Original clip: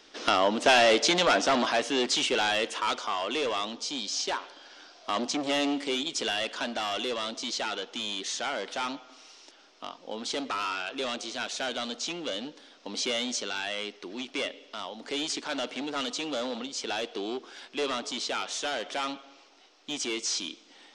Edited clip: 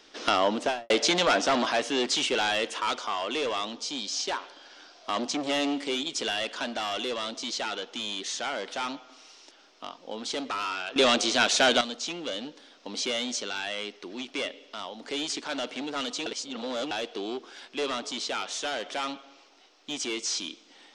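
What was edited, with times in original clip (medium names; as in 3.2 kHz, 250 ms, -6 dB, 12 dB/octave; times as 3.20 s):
0.51–0.90 s: studio fade out
10.96–11.81 s: gain +11 dB
16.26–16.91 s: reverse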